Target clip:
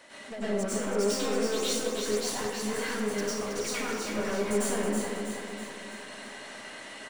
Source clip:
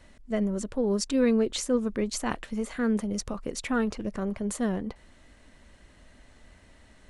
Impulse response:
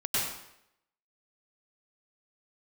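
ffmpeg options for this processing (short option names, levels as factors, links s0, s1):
-filter_complex "[0:a]highpass=410,acompressor=threshold=0.0141:ratio=6,asettb=1/sr,asplit=3[s0][s1][s2];[s0]atrim=end=1.634[s3];[s1]atrim=start=1.63:end=4.04,asetpts=PTS-STARTPTS,afade=t=in:d=0.004:c=qsin,afade=t=out:st=2.406:d=0.004:c=qsin,aeval=exprs='sgn(val(0))*max(abs(val(0))-0.00282,0)':c=same[s4];[s2]atrim=start=4.036[s5];[s3][s4]acrossfade=d=0.004:c1=hsin:c2=qsin[s6];[s6][s5]acrossfade=d=0.004:c1=qsin:c2=hsin,aeval=exprs='(tanh(141*val(0)+0.15)-tanh(0.15))/141':c=same,aecho=1:1:323|646|969|1292|1615|1938|2261:0.531|0.276|0.144|0.0746|0.0388|0.0202|0.0105[s7];[1:a]atrim=start_sample=2205[s8];[s7][s8]afir=irnorm=-1:irlink=0,volume=2.37"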